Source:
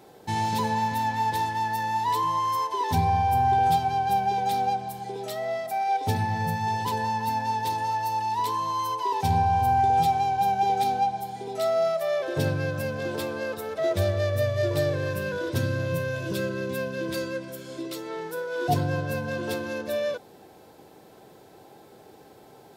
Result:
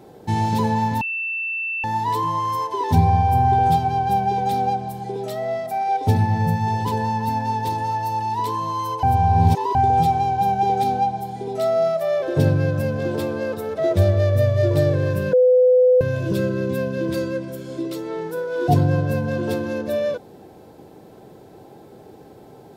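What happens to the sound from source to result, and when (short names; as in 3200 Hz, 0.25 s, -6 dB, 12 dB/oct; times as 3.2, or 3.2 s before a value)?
1.01–1.84 bleep 2670 Hz -22.5 dBFS
9.03–9.75 reverse
11.77–13.81 short-mantissa float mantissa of 8-bit
15.33–16.01 bleep 504 Hz -16.5 dBFS
whole clip: tilt shelf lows +5.5 dB, about 670 Hz; gain +4.5 dB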